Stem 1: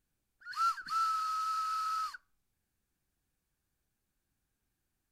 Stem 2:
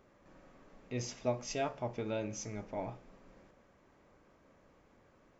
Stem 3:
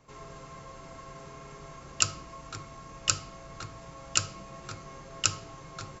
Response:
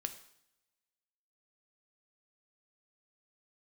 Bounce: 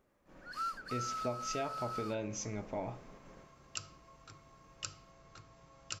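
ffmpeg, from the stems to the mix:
-filter_complex "[0:a]volume=0.631[s0];[1:a]agate=range=0.251:threshold=0.00112:ratio=16:detection=peak,volume=1.41[s1];[2:a]bandreject=f=6900:w=12,adelay=1750,volume=0.2[s2];[s0][s1][s2]amix=inputs=3:normalize=0,acompressor=threshold=0.0178:ratio=3"

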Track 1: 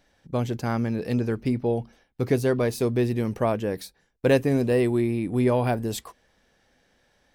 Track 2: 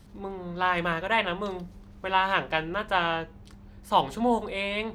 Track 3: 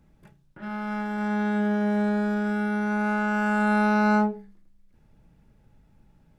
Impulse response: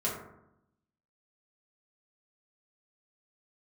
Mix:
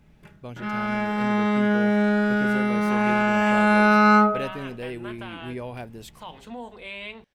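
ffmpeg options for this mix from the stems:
-filter_complex "[0:a]adelay=100,volume=0.224[s0];[1:a]alimiter=limit=0.1:level=0:latency=1:release=153,adelay=2300,volume=0.335[s1];[2:a]volume=1.06,asplit=2[s2][s3];[s3]volume=0.355[s4];[3:a]atrim=start_sample=2205[s5];[s4][s5]afir=irnorm=-1:irlink=0[s6];[s0][s1][s2][s6]amix=inputs=4:normalize=0,equalizer=f=2600:t=o:w=1.2:g=7"

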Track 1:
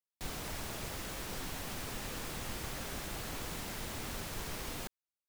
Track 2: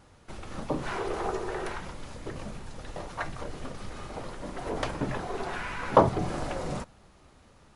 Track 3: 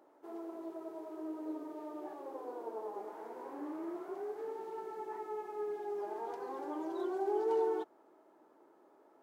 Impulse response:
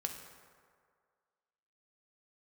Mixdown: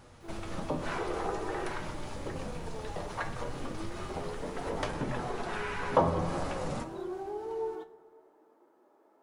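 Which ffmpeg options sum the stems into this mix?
-filter_complex "[0:a]acrossover=split=4900[s0][s1];[s1]acompressor=threshold=0.00178:ratio=4:attack=1:release=60[s2];[s0][s2]amix=inputs=2:normalize=0,volume=0.2[s3];[1:a]volume=1.33,asplit=2[s4][s5];[s5]volume=0.562[s6];[2:a]acontrast=71,volume=0.562,asplit=2[s7][s8];[s8]volume=0.299[s9];[s4][s7]amix=inputs=2:normalize=0,acompressor=threshold=0.0224:ratio=6,volume=1[s10];[3:a]atrim=start_sample=2205[s11];[s6][s9]amix=inputs=2:normalize=0[s12];[s12][s11]afir=irnorm=-1:irlink=0[s13];[s3][s10][s13]amix=inputs=3:normalize=0,flanger=delay=8.2:depth=3.7:regen=64:speed=0.57:shape=sinusoidal"

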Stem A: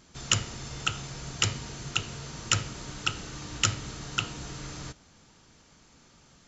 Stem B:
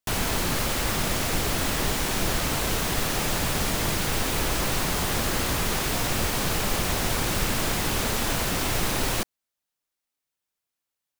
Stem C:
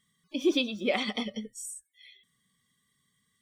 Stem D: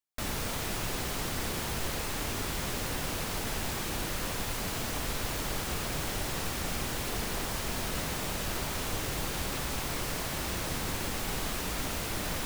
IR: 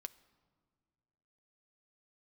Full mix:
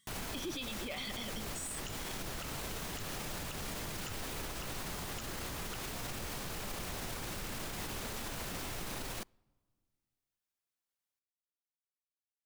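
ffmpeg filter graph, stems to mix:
-filter_complex "[0:a]adelay=1550,volume=0.2[s0];[1:a]alimiter=limit=0.0944:level=0:latency=1:release=72,volume=0.376,asplit=2[s1][s2];[s2]volume=0.299[s3];[2:a]highshelf=f=2100:g=10.5,volume=0.562[s4];[4:a]atrim=start_sample=2205[s5];[s3][s5]afir=irnorm=-1:irlink=0[s6];[s0][s1][s4][s6]amix=inputs=4:normalize=0,alimiter=level_in=2.37:limit=0.0631:level=0:latency=1:release=53,volume=0.422"

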